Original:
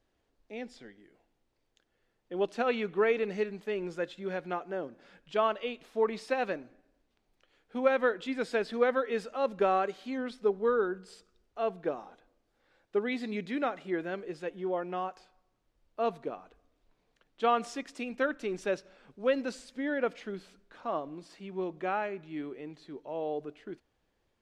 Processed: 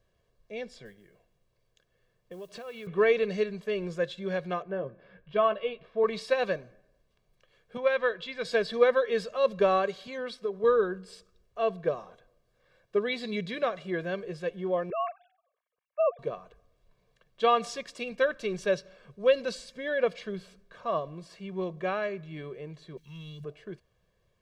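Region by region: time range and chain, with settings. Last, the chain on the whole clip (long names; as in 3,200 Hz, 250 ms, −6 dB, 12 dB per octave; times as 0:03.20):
0:00.85–0:02.87: noise that follows the level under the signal 24 dB + downward compressor, threshold −42 dBFS
0:04.62–0:06.04: high-frequency loss of the air 370 metres + double-tracking delay 15 ms −9 dB
0:07.77–0:08.45: Gaussian smoothing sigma 1.5 samples + parametric band 300 Hz −6.5 dB 2.7 octaves
0:10.07–0:10.64: downward compressor 4 to 1, threshold −29 dBFS + low-shelf EQ 140 Hz −11.5 dB
0:14.90–0:16.19: three sine waves on the formant tracks + treble cut that deepens with the level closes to 1,800 Hz, closed at −27.5 dBFS
0:22.97–0:23.44: Chebyshev band-stop filter 180–2,100 Hz + high-shelf EQ 5,100 Hz +9.5 dB + leveller curve on the samples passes 1
whole clip: parametric band 150 Hz +8.5 dB 1.2 octaves; comb filter 1.8 ms, depth 77%; dynamic equaliser 4,100 Hz, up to +7 dB, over −55 dBFS, Q 1.6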